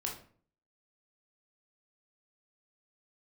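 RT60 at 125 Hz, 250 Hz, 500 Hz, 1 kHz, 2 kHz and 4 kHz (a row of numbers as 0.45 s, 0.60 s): 0.65 s, 0.60 s, 0.50 s, 0.45 s, 0.40 s, 0.35 s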